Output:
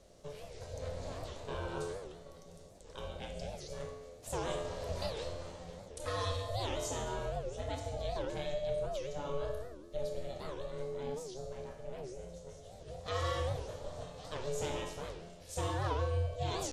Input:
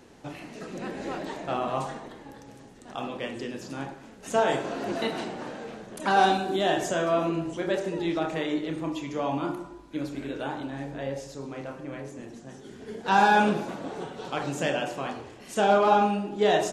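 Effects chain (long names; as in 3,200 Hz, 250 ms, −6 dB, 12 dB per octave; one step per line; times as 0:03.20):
flat-topped bell 1,100 Hz −10.5 dB 3 octaves
downward compressor, threshold −27 dBFS, peak gain reduction 5.5 dB
ring modulation 290 Hz
tuned comb filter 86 Hz, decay 0.92 s, harmonics all, mix 80%
wow of a warped record 78 rpm, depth 250 cents
level +9.5 dB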